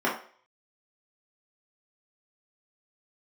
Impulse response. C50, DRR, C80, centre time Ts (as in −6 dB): 6.5 dB, −6.5 dB, 12.0 dB, 29 ms